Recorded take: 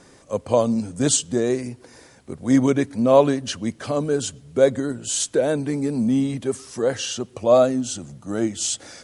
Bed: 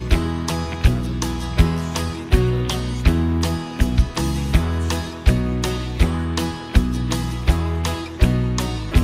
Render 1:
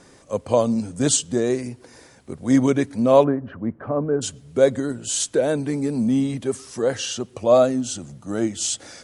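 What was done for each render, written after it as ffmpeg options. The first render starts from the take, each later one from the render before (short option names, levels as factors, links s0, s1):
-filter_complex "[0:a]asplit=3[s0][s1][s2];[s0]afade=t=out:st=3.23:d=0.02[s3];[s1]lowpass=f=1500:w=0.5412,lowpass=f=1500:w=1.3066,afade=t=in:st=3.23:d=0.02,afade=t=out:st=4.21:d=0.02[s4];[s2]afade=t=in:st=4.21:d=0.02[s5];[s3][s4][s5]amix=inputs=3:normalize=0"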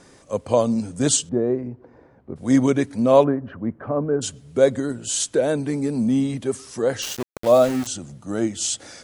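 -filter_complex "[0:a]asettb=1/sr,asplit=3[s0][s1][s2];[s0]atrim=end=1.294[s3];[s1]atrim=start=1.29:end=2.36,asetpts=PTS-STARTPTS,afade=t=in:d=0.004:c=qsin,afade=t=out:st=1.066:d=0.004:c=qsin,lowpass=1000[s4];[s2]atrim=start=2.356[s5];[s3][s4]acrossfade=d=0.004:c1=hsin:c2=qsin[s6];[s6][s5]acrossfade=d=0.004:c1=qsin:c2=hsin,asettb=1/sr,asplit=3[s7][s8][s9];[s7]atrim=end=7.024[s10];[s8]atrim=start=7.02:end=7.87,asetpts=PTS-STARTPTS,afade=t=in:d=0.004:c=qsin,afade=t=out:st=0.846:d=0.004:c=qsin,aeval=exprs='val(0)*gte(abs(val(0)),0.0447)':c=same[s11];[s9]atrim=start=7.866[s12];[s10][s11]acrossfade=d=0.004:c1=hsin:c2=qsin[s13];[s13][s12]acrossfade=d=0.004:c1=qsin:c2=hsin"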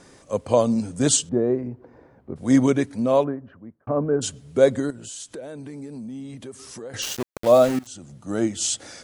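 -filter_complex "[0:a]asettb=1/sr,asplit=3[s0][s1][s2];[s0]atrim=end=4.904[s3];[s1]atrim=start=4.9:end=6.94,asetpts=PTS-STARTPTS,afade=t=in:d=0.004:c=qsin,afade=t=out:st=2.036:d=0.004:c=qsin,acompressor=threshold=0.0158:ratio=4:attack=3.2:release=140:knee=1:detection=peak[s4];[s2]atrim=start=6.936[s5];[s3][s4]acrossfade=d=0.004:c1=hsin:c2=qsin[s6];[s6][s5]acrossfade=d=0.004:c1=qsin:c2=hsin,asplit=3[s7][s8][s9];[s7]atrim=end=3.87,asetpts=PTS-STARTPTS,afade=t=out:st=2.64:d=1.23[s10];[s8]atrim=start=3.87:end=7.79,asetpts=PTS-STARTPTS,afade=t=in:d=0.004:c=hsin,afade=t=out:st=3.916:d=0.004:c=hsin:silence=0.105925[s11];[s9]atrim=start=7.79,asetpts=PTS-STARTPTS,afade=t=in:d=0.56:silence=0.105925[s12];[s10][s11][s12]concat=n=3:v=0:a=1"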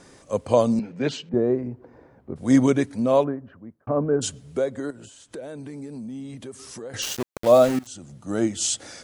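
-filter_complex "[0:a]asettb=1/sr,asplit=3[s0][s1][s2];[s0]atrim=end=0.794[s3];[s1]atrim=start=0.79:end=1.34,asetpts=PTS-STARTPTS,afade=t=in:d=0.004:c=qsin,afade=t=out:st=0.546:d=0.004:c=qsin,highpass=f=160:w=0.5412,highpass=f=160:w=1.3066,equalizer=f=280:t=q:w=4:g=-7,equalizer=f=680:t=q:w=4:g=-4,equalizer=f=1200:t=q:w=4:g=-6,equalizer=f=2300:t=q:w=4:g=6,equalizer=f=3400:t=q:w=4:g=-9,lowpass=f=3700:w=0.5412,lowpass=f=3700:w=1.3066[s4];[s2]atrim=start=1.336[s5];[s3][s4]acrossfade=d=0.004:c1=hsin:c2=qsin[s6];[s6][s5]acrossfade=d=0.004:c1=qsin:c2=hsin,asettb=1/sr,asplit=3[s7][s8][s9];[s7]atrim=end=4.434[s10];[s8]atrim=start=4.43:end=5.33,asetpts=PTS-STARTPTS,afade=t=in:d=0.004:c=qsin,afade=t=out:st=0.896:d=0.004:c=qsin,acrossover=split=310|2300[s11][s12][s13];[s11]acompressor=threshold=0.0126:ratio=4[s14];[s12]acompressor=threshold=0.0708:ratio=4[s15];[s13]acompressor=threshold=0.00282:ratio=4[s16];[s14][s15][s16]amix=inputs=3:normalize=0[s17];[s9]atrim=start=5.326[s18];[s10][s17]acrossfade=d=0.004:c1=hsin:c2=qsin[s19];[s19][s18]acrossfade=d=0.004:c1=qsin:c2=hsin"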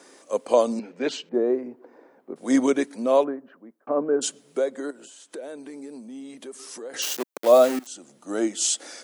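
-af "highpass=f=270:w=0.5412,highpass=f=270:w=1.3066,highshelf=f=12000:g=7"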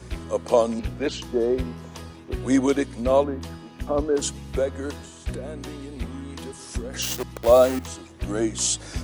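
-filter_complex "[1:a]volume=0.168[s0];[0:a][s0]amix=inputs=2:normalize=0"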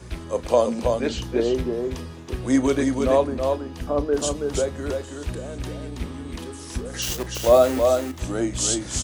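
-filter_complex "[0:a]asplit=2[s0][s1];[s1]adelay=34,volume=0.2[s2];[s0][s2]amix=inputs=2:normalize=0,aecho=1:1:326:0.596"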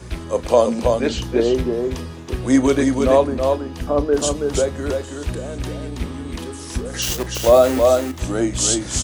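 -af "volume=1.68,alimiter=limit=0.708:level=0:latency=1"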